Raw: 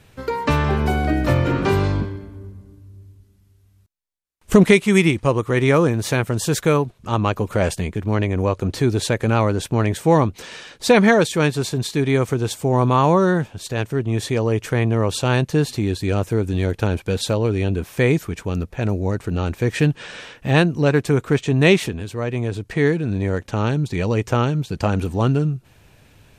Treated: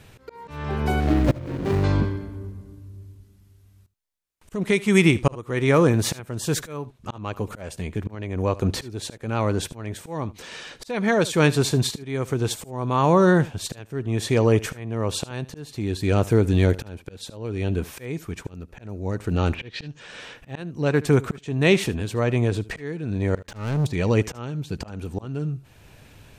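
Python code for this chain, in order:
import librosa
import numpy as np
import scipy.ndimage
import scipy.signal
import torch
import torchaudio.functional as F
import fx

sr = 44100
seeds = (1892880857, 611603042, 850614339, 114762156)

p1 = fx.median_filter(x, sr, points=41, at=(1.0, 1.84))
p2 = fx.lowpass_res(p1, sr, hz=fx.line((19.53, 2500.0), (19.99, 6900.0)), q=5.5, at=(19.53, 19.99), fade=0.02)
p3 = fx.leveller(p2, sr, passes=3, at=(23.35, 23.87))
p4 = fx.auto_swell(p3, sr, attack_ms=732.0)
p5 = p4 + fx.echo_single(p4, sr, ms=75, db=-19.5, dry=0)
y = p5 * 10.0 ** (2.0 / 20.0)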